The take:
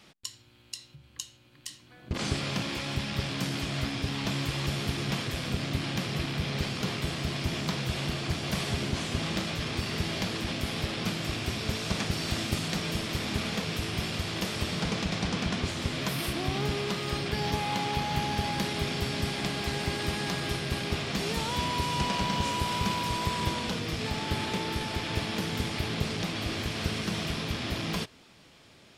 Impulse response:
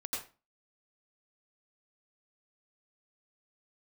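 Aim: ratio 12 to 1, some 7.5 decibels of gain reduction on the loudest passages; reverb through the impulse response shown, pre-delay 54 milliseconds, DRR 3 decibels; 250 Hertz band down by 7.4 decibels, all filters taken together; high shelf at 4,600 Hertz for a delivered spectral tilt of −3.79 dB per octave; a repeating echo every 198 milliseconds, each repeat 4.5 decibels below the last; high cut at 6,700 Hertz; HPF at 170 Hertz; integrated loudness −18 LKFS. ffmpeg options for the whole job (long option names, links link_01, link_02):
-filter_complex "[0:a]highpass=170,lowpass=6700,equalizer=frequency=250:width_type=o:gain=-8.5,highshelf=frequency=4600:gain=-6.5,acompressor=threshold=-36dB:ratio=12,aecho=1:1:198|396|594|792|990|1188|1386|1584|1782:0.596|0.357|0.214|0.129|0.0772|0.0463|0.0278|0.0167|0.01,asplit=2[link_01][link_02];[1:a]atrim=start_sample=2205,adelay=54[link_03];[link_02][link_03]afir=irnorm=-1:irlink=0,volume=-5dB[link_04];[link_01][link_04]amix=inputs=2:normalize=0,volume=18dB"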